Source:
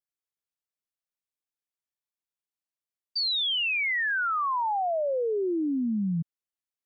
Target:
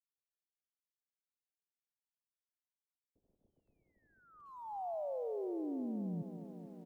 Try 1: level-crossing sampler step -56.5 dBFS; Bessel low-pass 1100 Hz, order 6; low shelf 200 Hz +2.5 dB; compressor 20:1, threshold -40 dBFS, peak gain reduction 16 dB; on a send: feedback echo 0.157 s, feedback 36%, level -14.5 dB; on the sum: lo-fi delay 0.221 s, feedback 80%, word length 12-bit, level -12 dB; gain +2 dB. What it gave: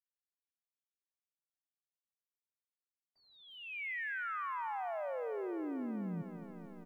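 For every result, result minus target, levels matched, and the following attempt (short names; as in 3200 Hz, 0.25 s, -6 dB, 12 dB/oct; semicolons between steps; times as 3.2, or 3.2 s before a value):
level-crossing sampler: distortion -10 dB; 1000 Hz band +4.0 dB
level-crossing sampler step -48 dBFS; Bessel low-pass 1100 Hz, order 6; low shelf 200 Hz +2.5 dB; compressor 20:1, threshold -40 dBFS, peak gain reduction 16 dB; on a send: feedback echo 0.157 s, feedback 36%, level -14.5 dB; on the sum: lo-fi delay 0.221 s, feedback 80%, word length 12-bit, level -12 dB; gain +2 dB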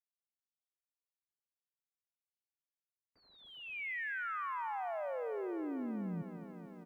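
1000 Hz band +4.0 dB
level-crossing sampler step -48 dBFS; Bessel low-pass 370 Hz, order 6; low shelf 200 Hz +2.5 dB; compressor 20:1, threshold -40 dBFS, peak gain reduction 15.5 dB; on a send: feedback echo 0.157 s, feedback 36%, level -14.5 dB; on the sum: lo-fi delay 0.221 s, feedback 80%, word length 12-bit, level -12 dB; gain +2 dB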